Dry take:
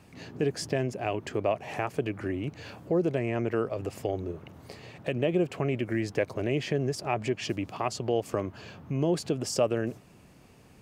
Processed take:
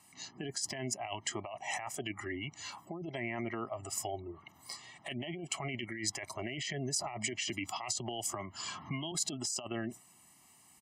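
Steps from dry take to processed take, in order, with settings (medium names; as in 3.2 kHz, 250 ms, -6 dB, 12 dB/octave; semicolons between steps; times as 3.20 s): high-pass 770 Hz 6 dB/octave; dynamic bell 1.1 kHz, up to -7 dB, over -52 dBFS, Q 2.2; comb 1 ms, depth 97%; spectral gate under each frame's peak -30 dB strong; spectral noise reduction 10 dB; compressor with a negative ratio -39 dBFS, ratio -1; peaking EQ 7.4 kHz +10 dB 0.77 oct; band-stop 1.8 kHz, Q 29; 6.97–9.12 s: three bands compressed up and down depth 100%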